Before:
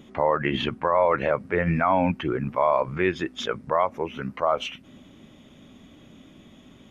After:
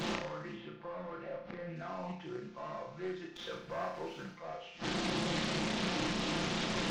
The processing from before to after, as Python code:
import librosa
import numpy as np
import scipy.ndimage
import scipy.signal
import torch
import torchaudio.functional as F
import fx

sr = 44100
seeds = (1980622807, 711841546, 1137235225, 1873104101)

p1 = fx.delta_mod(x, sr, bps=32000, step_db=-36.5)
p2 = fx.low_shelf(p1, sr, hz=140.0, db=-4.5)
p3 = p2 + 0.97 * np.pad(p2, (int(5.8 * sr / 1000.0), 0))[:len(p2)]
p4 = fx.leveller(p3, sr, passes=2, at=(3.36, 4.33))
p5 = fx.gate_flip(p4, sr, shuts_db=-26.0, range_db=-27)
p6 = fx.air_absorb(p5, sr, metres=220.0, at=(0.54, 1.76))
p7 = p6 + fx.room_flutter(p6, sr, wall_m=5.6, rt60_s=0.55, dry=0)
p8 = fx.doppler_dist(p7, sr, depth_ms=0.48)
y = p8 * librosa.db_to_amplitude(4.5)